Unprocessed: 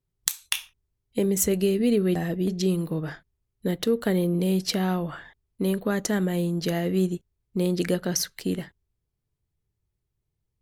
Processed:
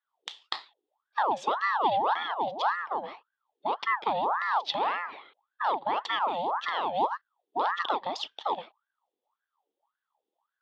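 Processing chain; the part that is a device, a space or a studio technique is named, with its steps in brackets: voice changer toy (ring modulator with a swept carrier 960 Hz, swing 65%, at 1.8 Hz; cabinet simulation 460–3800 Hz, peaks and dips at 560 Hz -3 dB, 860 Hz +6 dB, 1.5 kHz -9 dB, 2.3 kHz -6 dB, 3.4 kHz +9 dB)

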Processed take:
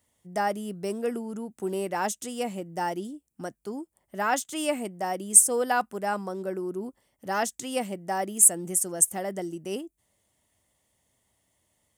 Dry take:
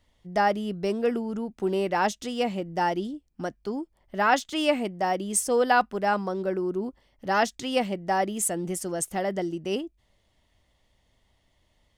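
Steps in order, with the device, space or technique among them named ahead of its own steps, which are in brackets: budget condenser microphone (high-pass 96 Hz 12 dB/octave; resonant high shelf 6.2 kHz +12.5 dB, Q 1.5); trim -4 dB

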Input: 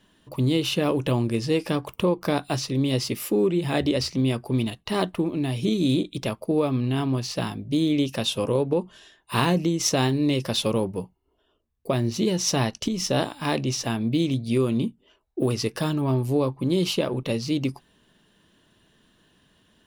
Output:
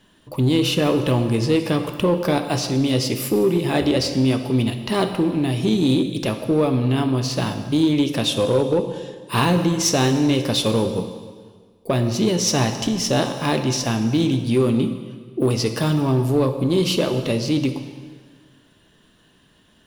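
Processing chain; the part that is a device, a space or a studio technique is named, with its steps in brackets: plate-style reverb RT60 1.7 s, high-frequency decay 0.9×, DRR 7 dB; parallel distortion (in parallel at -4 dB: hard clipper -19.5 dBFS, distortion -13 dB)

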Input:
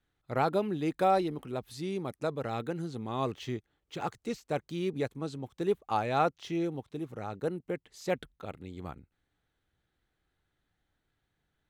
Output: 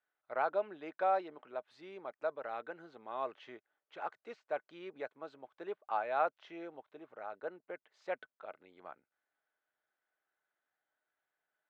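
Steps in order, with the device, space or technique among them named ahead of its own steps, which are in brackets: tin-can telephone (band-pass 680–2000 Hz; small resonant body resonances 620/1500 Hz, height 8 dB); trim -3.5 dB

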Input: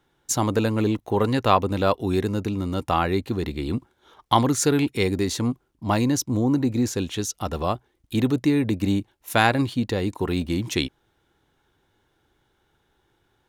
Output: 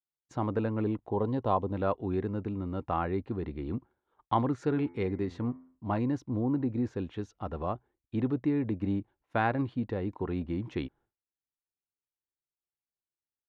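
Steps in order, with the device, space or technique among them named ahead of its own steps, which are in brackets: 1.09–1.73 s: time-frequency box 1.1–2.9 kHz -9 dB; 4.64–5.98 s: de-hum 85.98 Hz, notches 26; hearing-loss simulation (low-pass 1.6 kHz 12 dB/octave; expander -46 dBFS); trim -8 dB

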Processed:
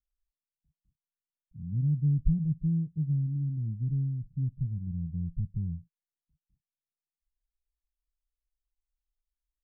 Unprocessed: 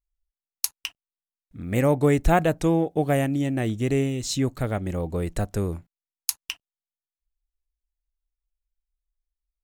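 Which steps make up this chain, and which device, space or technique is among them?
the neighbour's flat through the wall (low-pass 160 Hz 24 dB/octave; peaking EQ 160 Hz +8 dB 0.63 oct); trim -5 dB

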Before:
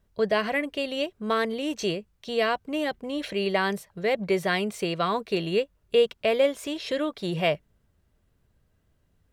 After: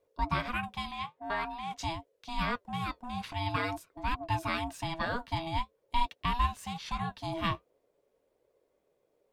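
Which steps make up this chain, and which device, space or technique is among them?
alien voice (ring modulator 490 Hz; flange 0.47 Hz, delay 1.6 ms, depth 8.4 ms, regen -62%); 0.91–1.78 s: tone controls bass -12 dB, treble -9 dB

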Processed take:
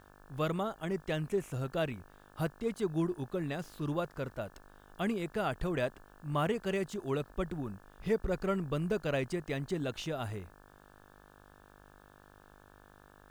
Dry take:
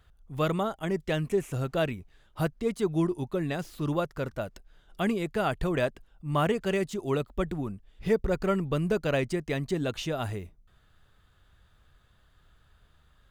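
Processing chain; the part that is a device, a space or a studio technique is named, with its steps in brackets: video cassette with head-switching buzz (mains buzz 50 Hz, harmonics 35, -54 dBFS -1 dB/octave; white noise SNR 38 dB); trim -5.5 dB

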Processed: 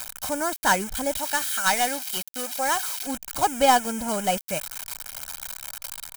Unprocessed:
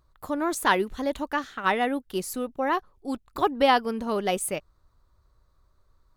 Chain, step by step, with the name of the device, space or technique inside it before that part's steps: 1.17–3.07 s: RIAA curve recording; budget class-D amplifier (dead-time distortion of 0.11 ms; zero-crossing glitches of -15.5 dBFS); comb 1.3 ms, depth 66%

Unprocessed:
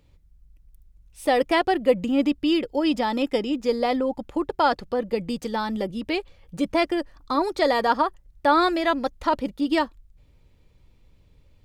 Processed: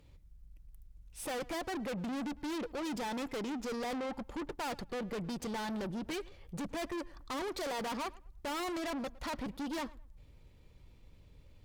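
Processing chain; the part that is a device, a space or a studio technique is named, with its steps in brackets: rockabilly slapback (valve stage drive 36 dB, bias 0.35; tape echo 108 ms, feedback 27%, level -19 dB, low-pass 2.4 kHz)

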